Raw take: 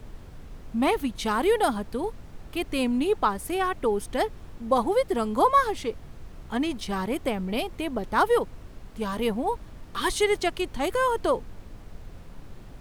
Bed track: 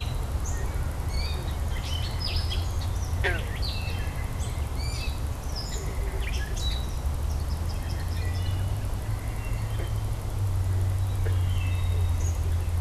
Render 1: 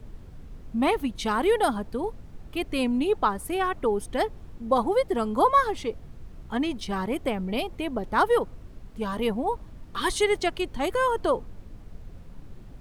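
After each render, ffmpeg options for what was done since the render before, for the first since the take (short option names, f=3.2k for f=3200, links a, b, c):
-af "afftdn=nr=6:nf=-45"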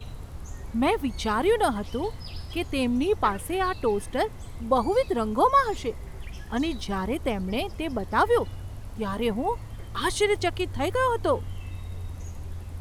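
-filter_complex "[1:a]volume=-11dB[a];[0:a][a]amix=inputs=2:normalize=0"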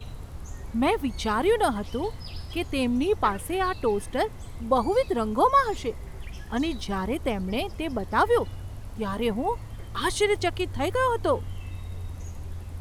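-af anull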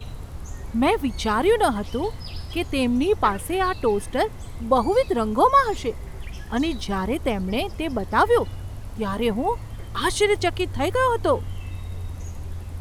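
-af "volume=3.5dB"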